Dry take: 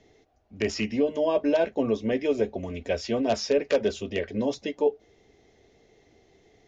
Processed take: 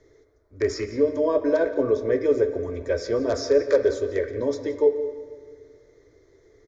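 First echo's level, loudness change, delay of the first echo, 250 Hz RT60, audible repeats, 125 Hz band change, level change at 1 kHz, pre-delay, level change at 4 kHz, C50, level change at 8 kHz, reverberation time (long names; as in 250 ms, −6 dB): −16.5 dB, +3.0 dB, 175 ms, 2.5 s, 1, +1.0 dB, −1.5 dB, 12 ms, −3.5 dB, 9.5 dB, can't be measured, 1.9 s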